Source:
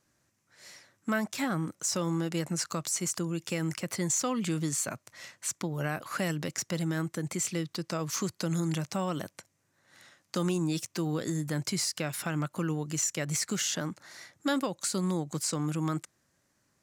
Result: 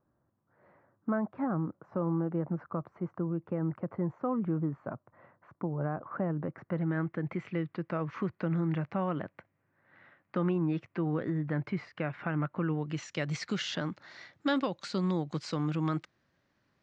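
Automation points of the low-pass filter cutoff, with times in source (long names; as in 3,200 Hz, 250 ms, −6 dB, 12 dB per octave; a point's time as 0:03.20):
low-pass filter 24 dB per octave
0:06.36 1,200 Hz
0:07.06 2,200 Hz
0:12.64 2,200 Hz
0:13.13 4,200 Hz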